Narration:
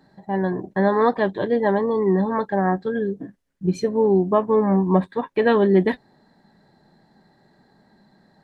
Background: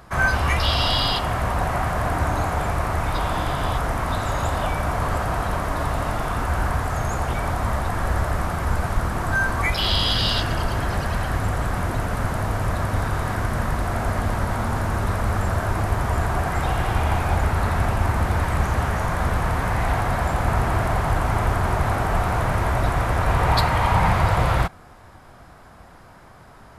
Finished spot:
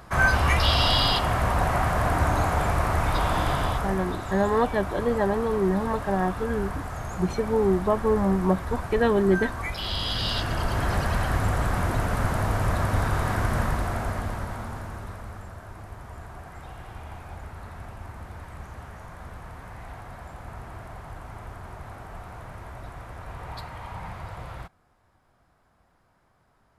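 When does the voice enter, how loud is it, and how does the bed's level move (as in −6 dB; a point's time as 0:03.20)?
3.55 s, −4.5 dB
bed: 0:03.55 −0.5 dB
0:04.18 −9.5 dB
0:09.83 −9.5 dB
0:10.90 −1 dB
0:13.59 −1 dB
0:15.55 −19 dB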